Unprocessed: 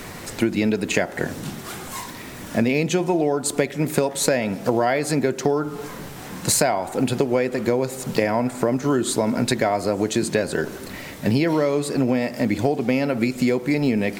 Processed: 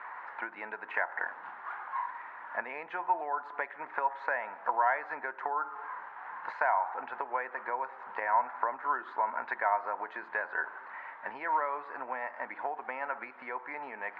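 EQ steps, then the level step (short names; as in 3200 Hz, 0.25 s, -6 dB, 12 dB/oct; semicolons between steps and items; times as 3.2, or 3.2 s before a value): resonant high-pass 930 Hz, resonance Q 4.9; ladder low-pass 1900 Hz, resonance 55%; air absorption 86 m; -3.0 dB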